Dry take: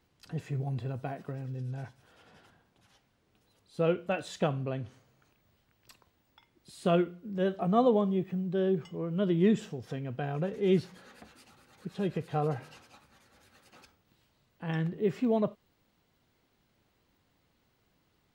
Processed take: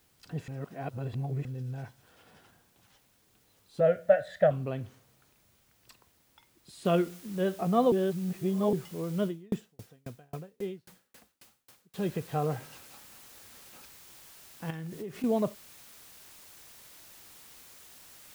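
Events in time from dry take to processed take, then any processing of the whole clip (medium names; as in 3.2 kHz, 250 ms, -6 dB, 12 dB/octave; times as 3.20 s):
0.48–1.45 s: reverse
3.80–4.51 s: FFT filter 150 Hz 0 dB, 250 Hz -10 dB, 380 Hz -17 dB, 600 Hz +15 dB, 1 kHz -15 dB, 1.8 kHz +11 dB, 2.6 kHz -12 dB, 3.8 kHz -6 dB, 5.9 kHz -17 dB, 9.4 kHz -11 dB
6.85 s: noise floor step -69 dB -53 dB
7.92–8.73 s: reverse
9.25–11.94 s: sawtooth tremolo in dB decaying 3.7 Hz, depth 38 dB
14.70–15.24 s: compression 8:1, threshold -35 dBFS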